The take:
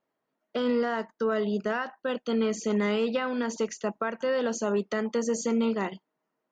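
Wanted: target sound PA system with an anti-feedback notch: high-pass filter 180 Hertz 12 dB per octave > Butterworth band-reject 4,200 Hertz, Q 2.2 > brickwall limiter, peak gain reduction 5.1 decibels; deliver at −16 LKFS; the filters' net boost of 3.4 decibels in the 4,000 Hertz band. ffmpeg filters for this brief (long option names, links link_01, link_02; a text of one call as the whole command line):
ffmpeg -i in.wav -af "highpass=180,asuperstop=centerf=4200:order=8:qfactor=2.2,equalizer=frequency=4000:width_type=o:gain=8.5,volume=15dB,alimiter=limit=-6.5dB:level=0:latency=1" out.wav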